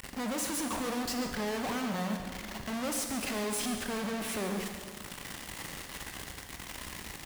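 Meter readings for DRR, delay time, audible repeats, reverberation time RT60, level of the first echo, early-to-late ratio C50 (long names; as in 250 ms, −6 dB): 3.5 dB, 139 ms, 1, 1.8 s, −12.0 dB, 4.5 dB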